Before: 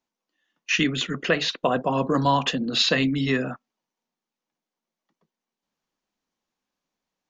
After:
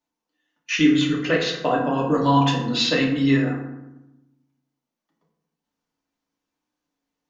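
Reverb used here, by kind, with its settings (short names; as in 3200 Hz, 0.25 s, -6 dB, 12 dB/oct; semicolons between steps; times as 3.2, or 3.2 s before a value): FDN reverb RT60 0.95 s, low-frequency decay 1.4×, high-frequency decay 0.5×, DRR -2.5 dB; gain -3.5 dB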